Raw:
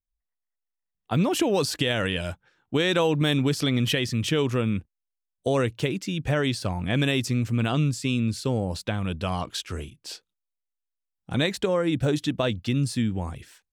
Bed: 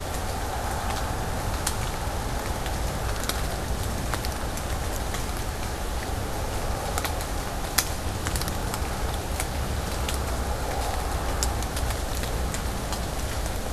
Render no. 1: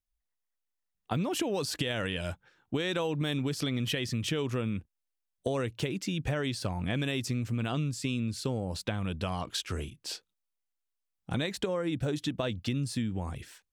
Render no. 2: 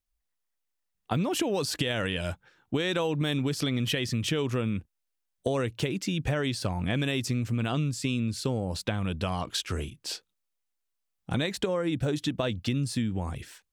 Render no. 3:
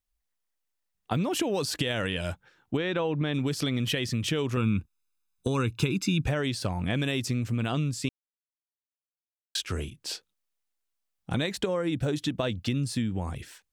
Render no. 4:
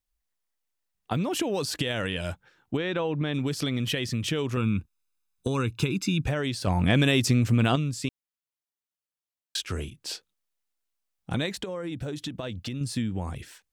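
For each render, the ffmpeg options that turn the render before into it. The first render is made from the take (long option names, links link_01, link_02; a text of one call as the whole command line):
ffmpeg -i in.wav -af "acompressor=threshold=-29dB:ratio=4" out.wav
ffmpeg -i in.wav -af "volume=3dB" out.wav
ffmpeg -i in.wav -filter_complex "[0:a]asplit=3[link_01][link_02][link_03];[link_01]afade=type=out:start_time=2.76:duration=0.02[link_04];[link_02]lowpass=2800,afade=type=in:start_time=2.76:duration=0.02,afade=type=out:start_time=3.33:duration=0.02[link_05];[link_03]afade=type=in:start_time=3.33:duration=0.02[link_06];[link_04][link_05][link_06]amix=inputs=3:normalize=0,asettb=1/sr,asplit=3[link_07][link_08][link_09];[link_07]atrim=end=4.574[link_10];[link_08]atrim=start=4.57:end=6.27,asetpts=PTS-STARTPTS,afade=type=in:duration=0.004:curve=qsin,afade=type=out:start_time=1.696:duration=0.004:curve=qsin,aecho=1:1:0.8:0.8,atrim=end_sample=74970[link_11];[link_09]atrim=start=6.266[link_12];[link_10][link_11]acrossfade=duration=0.004:curve1=hsin:curve2=qsin[link_13];[link_13][link_12]acrossfade=duration=0.004:curve1=qsin:curve2=hsin,asplit=3[link_14][link_15][link_16];[link_14]atrim=end=8.09,asetpts=PTS-STARTPTS,afade=type=out:start_time=8.086:duration=0.004:curve=hsin[link_17];[link_15]atrim=start=8.09:end=9.55,asetpts=PTS-STARTPTS,volume=0[link_18];[link_16]atrim=start=9.55,asetpts=PTS-STARTPTS,afade=type=in:duration=0.004:curve=hsin[link_19];[link_17][link_18][link_19]concat=n=3:v=0:a=1" out.wav
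ffmpeg -i in.wav -filter_complex "[0:a]asettb=1/sr,asplit=3[link_01][link_02][link_03];[link_01]atrim=end=6.674[link_04];[link_02]atrim=start=6.67:end=7.76,asetpts=PTS-STARTPTS,afade=type=in:duration=0.004:curve=qsin,afade=type=out:start_time=1.086:duration=0.004:curve=qsin,acontrast=78[link_05];[link_03]atrim=start=7.756[link_06];[link_04][link_05]acrossfade=duration=0.004:curve1=hsin:curve2=qsin[link_07];[link_07][link_06]acrossfade=duration=0.004:curve1=qsin:curve2=hsin,asettb=1/sr,asplit=3[link_08][link_09][link_10];[link_08]atrim=end=11.544[link_11];[link_09]atrim=start=11.54:end=12.81,asetpts=PTS-STARTPTS,afade=type=in:duration=0.004:curve=qsin,afade=type=out:start_time=1.266:duration=0.004:curve=qsin,acompressor=threshold=-31dB:ratio=3:attack=3.2:release=140:knee=1:detection=peak[link_12];[link_10]atrim=start=12.806[link_13];[link_11][link_12]acrossfade=duration=0.004:curve1=hsin:curve2=qsin[link_14];[link_14][link_13]acrossfade=duration=0.004:curve1=qsin:curve2=hsin" out.wav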